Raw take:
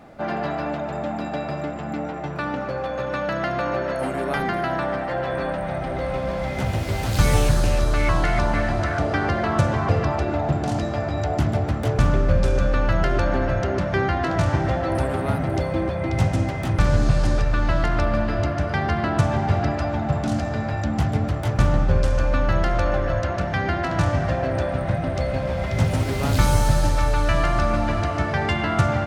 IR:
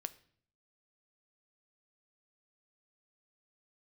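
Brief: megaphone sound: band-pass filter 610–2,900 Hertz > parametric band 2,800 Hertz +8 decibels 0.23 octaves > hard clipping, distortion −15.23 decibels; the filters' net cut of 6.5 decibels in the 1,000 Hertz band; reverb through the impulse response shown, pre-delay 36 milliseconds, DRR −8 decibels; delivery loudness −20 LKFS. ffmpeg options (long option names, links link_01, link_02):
-filter_complex "[0:a]equalizer=frequency=1000:width_type=o:gain=-8,asplit=2[link_01][link_02];[1:a]atrim=start_sample=2205,adelay=36[link_03];[link_02][link_03]afir=irnorm=-1:irlink=0,volume=10.5dB[link_04];[link_01][link_04]amix=inputs=2:normalize=0,highpass=610,lowpass=2900,equalizer=frequency=2800:width_type=o:width=0.23:gain=8,asoftclip=type=hard:threshold=-18dB,volume=3.5dB"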